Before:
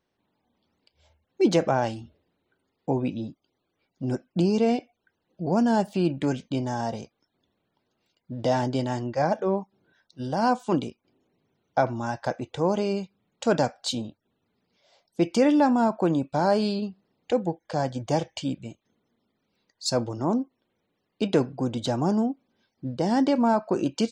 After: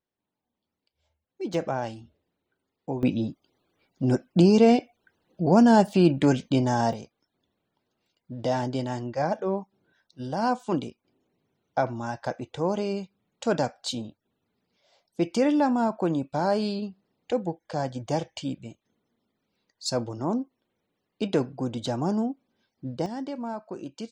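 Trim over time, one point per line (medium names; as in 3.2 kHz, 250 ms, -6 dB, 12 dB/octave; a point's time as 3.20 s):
-12 dB
from 1.54 s -5.5 dB
from 3.03 s +5 dB
from 6.93 s -2.5 dB
from 23.06 s -12 dB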